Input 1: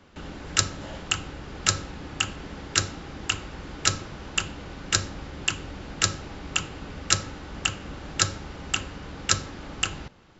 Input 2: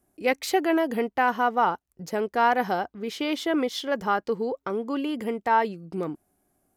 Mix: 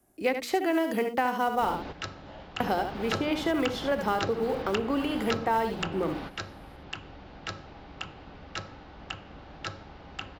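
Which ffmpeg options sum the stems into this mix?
ffmpeg -i stem1.wav -i stem2.wav -filter_complex "[0:a]lowpass=frequency=4800:width=0.5412,lowpass=frequency=4800:width=1.3066,equalizer=frequency=750:width_type=o:width=0.75:gain=7,adelay=1450,volume=1.5dB[link_01];[1:a]bandreject=frequency=60:width_type=h:width=6,bandreject=frequency=120:width_type=h:width=6,bandreject=frequency=180:width_type=h:width=6,bandreject=frequency=240:width_type=h:width=6,bandreject=frequency=300:width_type=h:width=6,bandreject=frequency=360:width_type=h:width=6,bandreject=frequency=420:width_type=h:width=6,bandreject=frequency=480:width_type=h:width=6,acrusher=bits=8:mode=log:mix=0:aa=0.000001,volume=3dB,asplit=3[link_02][link_03][link_04];[link_02]atrim=end=1.89,asetpts=PTS-STARTPTS,afade=type=out:start_time=1.886:duration=0.004:curve=hsin[link_05];[link_03]atrim=start=1.89:end=2.6,asetpts=PTS-STARTPTS,volume=0[link_06];[link_04]atrim=start=2.6,asetpts=PTS-STARTPTS,afade=type=in:duration=0.004:curve=hsin[link_07];[link_05][link_06][link_07]concat=n=3:v=0:a=1,asplit=3[link_08][link_09][link_10];[link_09]volume=-8.5dB[link_11];[link_10]apad=whole_len=522324[link_12];[link_01][link_12]sidechaingate=range=-11dB:threshold=-45dB:ratio=16:detection=peak[link_13];[link_11]aecho=0:1:71:1[link_14];[link_13][link_08][link_14]amix=inputs=3:normalize=0,acrossover=split=140|790|2500[link_15][link_16][link_17][link_18];[link_15]acompressor=threshold=-45dB:ratio=4[link_19];[link_16]acompressor=threshold=-26dB:ratio=4[link_20];[link_17]acompressor=threshold=-34dB:ratio=4[link_21];[link_18]acompressor=threshold=-40dB:ratio=4[link_22];[link_19][link_20][link_21][link_22]amix=inputs=4:normalize=0" out.wav

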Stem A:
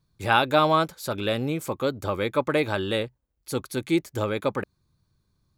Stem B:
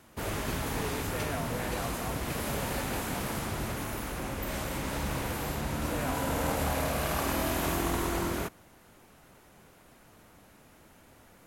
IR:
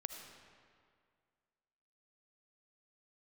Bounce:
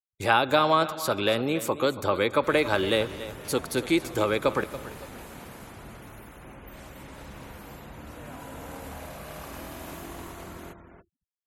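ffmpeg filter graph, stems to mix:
-filter_complex "[0:a]acrossover=split=270|1100[link_01][link_02][link_03];[link_01]acompressor=threshold=-41dB:ratio=4[link_04];[link_02]acompressor=threshold=-25dB:ratio=4[link_05];[link_03]acompressor=threshold=-27dB:ratio=4[link_06];[link_04][link_05][link_06]amix=inputs=3:normalize=0,volume=2dB,asplit=3[link_07][link_08][link_09];[link_08]volume=-9.5dB[link_10];[link_09]volume=-13dB[link_11];[1:a]adelay=2250,volume=-13.5dB,asplit=3[link_12][link_13][link_14];[link_13]volume=-4.5dB[link_15];[link_14]volume=-5.5dB[link_16];[2:a]atrim=start_sample=2205[link_17];[link_10][link_15]amix=inputs=2:normalize=0[link_18];[link_18][link_17]afir=irnorm=-1:irlink=0[link_19];[link_11][link_16]amix=inputs=2:normalize=0,aecho=0:1:282|564|846|1128|1410:1|0.33|0.109|0.0359|0.0119[link_20];[link_07][link_12][link_19][link_20]amix=inputs=4:normalize=0,agate=range=-12dB:threshold=-52dB:ratio=16:detection=peak,afftfilt=real='re*gte(hypot(re,im),0.00224)':imag='im*gte(hypot(re,im),0.00224)':win_size=1024:overlap=0.75"

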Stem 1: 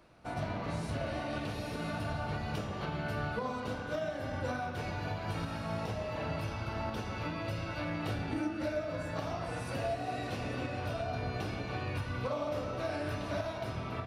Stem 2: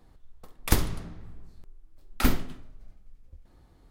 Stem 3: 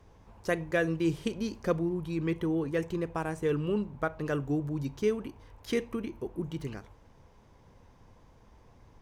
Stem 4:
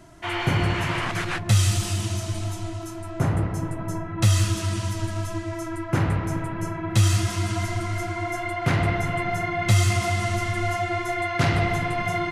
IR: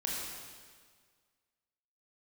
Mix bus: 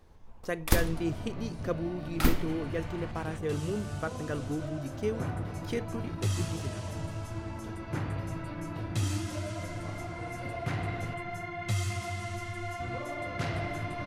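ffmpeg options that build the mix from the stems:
-filter_complex "[0:a]lowshelf=frequency=380:gain=9.5,adelay=700,volume=-10dB,asplit=3[link_01][link_02][link_03];[link_01]atrim=end=11.14,asetpts=PTS-STARTPTS,afade=type=out:start_time=11.136:duration=0.004:curve=hsin[link_04];[link_02]atrim=start=11.14:end=12.8,asetpts=PTS-STARTPTS,volume=0[link_05];[link_03]atrim=start=12.8,asetpts=PTS-STARTPTS,afade=type=in:duration=0.004:curve=hsin[link_06];[link_04][link_05][link_06]concat=n=3:v=0:a=1[link_07];[1:a]volume=-2.5dB[link_08];[2:a]volume=-4dB[link_09];[3:a]adelay=2000,volume=-12dB,afade=type=in:start_time=3.87:duration=0.64:silence=0.334965[link_10];[link_07][link_08][link_09][link_10]amix=inputs=4:normalize=0"

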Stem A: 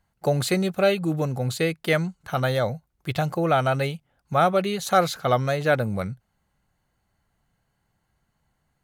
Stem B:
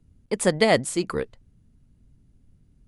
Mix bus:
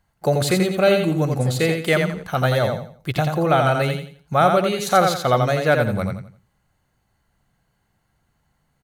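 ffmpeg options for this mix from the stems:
ffmpeg -i stem1.wav -i stem2.wav -filter_complex "[0:a]volume=3dB,asplit=2[link_01][link_02];[link_02]volume=-5dB[link_03];[1:a]acompressor=threshold=-22dB:ratio=6,adelay=1000,volume=-9.5dB[link_04];[link_03]aecho=0:1:86|172|258|344:1|0.3|0.09|0.027[link_05];[link_01][link_04][link_05]amix=inputs=3:normalize=0" out.wav

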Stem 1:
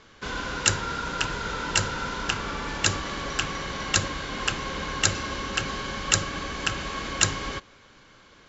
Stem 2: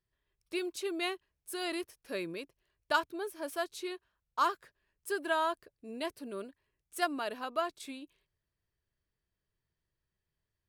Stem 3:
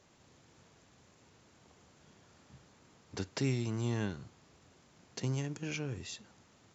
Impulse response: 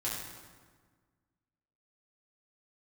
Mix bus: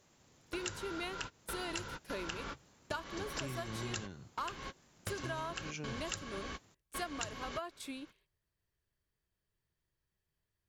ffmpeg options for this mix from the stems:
-filter_complex "[0:a]volume=-8.5dB[link_01];[1:a]volume=0dB,asplit=2[link_02][link_03];[2:a]equalizer=frequency=13000:width_type=o:width=0.77:gain=15,volume=-3.5dB[link_04];[link_03]apad=whole_len=374193[link_05];[link_01][link_05]sidechaingate=range=-58dB:threshold=-53dB:ratio=16:detection=peak[link_06];[link_06][link_02][link_04]amix=inputs=3:normalize=0,acompressor=threshold=-37dB:ratio=6"

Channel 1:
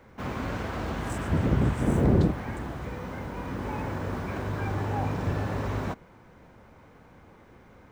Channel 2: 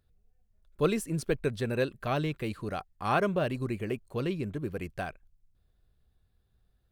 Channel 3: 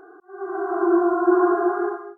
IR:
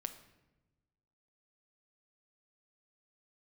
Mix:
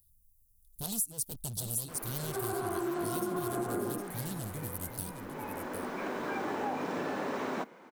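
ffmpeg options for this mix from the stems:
-filter_complex "[0:a]highpass=frequency=230:width=0.5412,highpass=frequency=230:width=1.3066,adelay=1700,volume=1dB[link_01];[1:a]firequalizer=gain_entry='entry(110,0);entry(650,-29);entry(11000,-2)':delay=0.05:min_phase=1,aeval=exprs='0.0188*(abs(mod(val(0)/0.0188+3,4)-2)-1)':channel_layout=same,aexciter=amount=13.1:drive=6.3:freq=3200,volume=-1dB,asplit=3[link_02][link_03][link_04];[link_03]volume=-9dB[link_05];[2:a]acompressor=threshold=-26dB:ratio=3,adelay=1950,volume=-4.5dB[link_06];[link_04]apad=whole_len=423850[link_07];[link_01][link_07]sidechaincompress=threshold=-44dB:ratio=3:attack=16:release=1320[link_08];[link_05]aecho=0:1:758:1[link_09];[link_08][link_02][link_06][link_09]amix=inputs=4:normalize=0,acompressor=threshold=-30dB:ratio=6"

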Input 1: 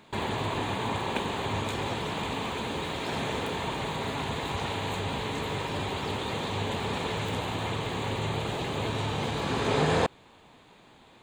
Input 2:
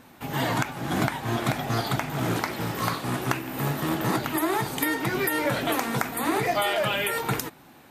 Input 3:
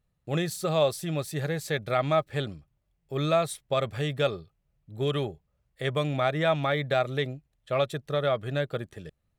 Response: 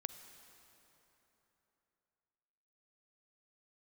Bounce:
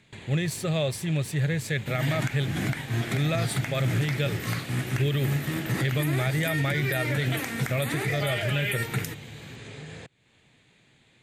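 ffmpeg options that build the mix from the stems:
-filter_complex "[0:a]lowpass=9300,highshelf=frequency=5500:gain=8,acompressor=threshold=-37dB:ratio=3,volume=-8.5dB[link_01];[1:a]adelay=1650,volume=-5.5dB[link_02];[2:a]volume=-1.5dB[link_03];[link_01][link_02][link_03]amix=inputs=3:normalize=0,equalizer=frequency=125:width_type=o:width=1:gain=10,equalizer=frequency=1000:width_type=o:width=1:gain=-10,equalizer=frequency=2000:width_type=o:width=1:gain=9,equalizer=frequency=8000:width_type=o:width=1:gain=4,alimiter=limit=-17.5dB:level=0:latency=1:release=37"

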